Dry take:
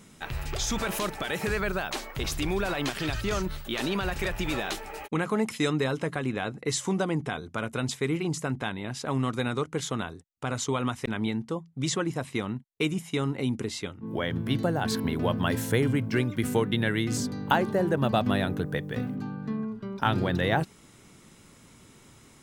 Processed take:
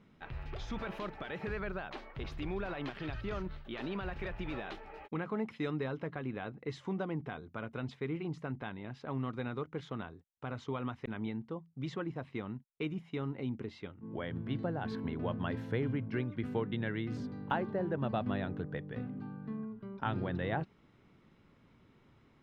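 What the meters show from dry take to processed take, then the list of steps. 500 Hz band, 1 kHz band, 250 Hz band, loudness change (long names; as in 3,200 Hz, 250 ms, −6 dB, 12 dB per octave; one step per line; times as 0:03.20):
−9.5 dB, −10.0 dB, −9.0 dB, −10.0 dB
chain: high-frequency loss of the air 320 metres
level −8.5 dB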